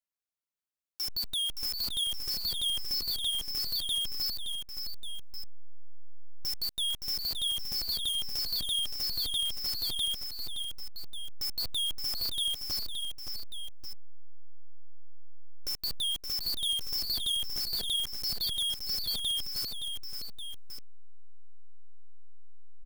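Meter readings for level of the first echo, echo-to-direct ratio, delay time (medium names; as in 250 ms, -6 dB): -6.5 dB, -5.0 dB, 570 ms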